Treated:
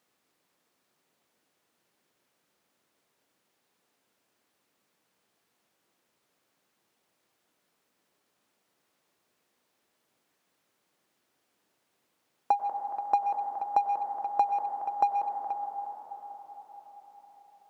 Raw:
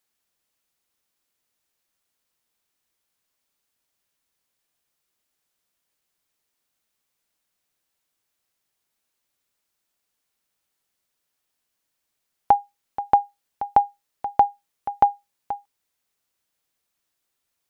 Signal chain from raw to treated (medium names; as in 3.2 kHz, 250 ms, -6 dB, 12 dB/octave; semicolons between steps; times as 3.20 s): backward echo that repeats 210 ms, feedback 58%, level -12.5 dB; low-pass 1.1 kHz 12 dB/octave; bass shelf 480 Hz -10.5 dB; reverberation RT60 5.4 s, pre-delay 88 ms, DRR 6.5 dB; added noise pink -71 dBFS; in parallel at -8.5 dB: hard clipper -24.5 dBFS, distortion -5 dB; on the sum: high-pass 240 Hz 12 dB/octave; trim -5.5 dB